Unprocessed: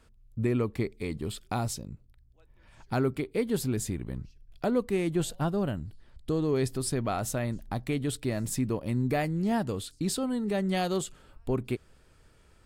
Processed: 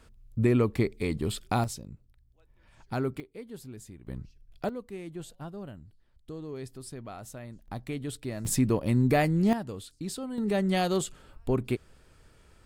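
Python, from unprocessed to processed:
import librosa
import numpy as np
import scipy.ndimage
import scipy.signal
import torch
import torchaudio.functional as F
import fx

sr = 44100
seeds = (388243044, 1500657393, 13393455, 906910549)

y = fx.gain(x, sr, db=fx.steps((0.0, 4.0), (1.64, -3.0), (3.2, -14.5), (4.07, -2.0), (4.69, -12.0), (7.68, -5.0), (8.45, 4.5), (9.53, -6.0), (10.38, 2.0)))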